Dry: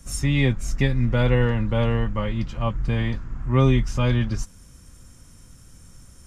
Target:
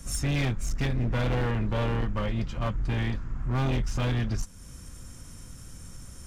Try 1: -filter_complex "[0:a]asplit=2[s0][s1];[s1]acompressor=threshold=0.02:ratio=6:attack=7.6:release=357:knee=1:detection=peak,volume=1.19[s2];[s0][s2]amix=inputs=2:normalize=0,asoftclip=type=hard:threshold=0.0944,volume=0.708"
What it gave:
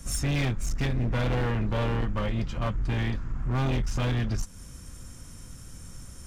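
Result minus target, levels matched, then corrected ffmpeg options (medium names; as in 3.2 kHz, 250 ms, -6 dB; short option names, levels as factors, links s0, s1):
compression: peak gain reduction -6.5 dB
-filter_complex "[0:a]asplit=2[s0][s1];[s1]acompressor=threshold=0.00841:ratio=6:attack=7.6:release=357:knee=1:detection=peak,volume=1.19[s2];[s0][s2]amix=inputs=2:normalize=0,asoftclip=type=hard:threshold=0.0944,volume=0.708"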